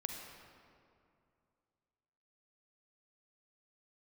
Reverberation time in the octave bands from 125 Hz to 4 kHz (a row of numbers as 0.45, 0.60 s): 2.8, 2.7, 2.5, 2.4, 1.9, 1.4 s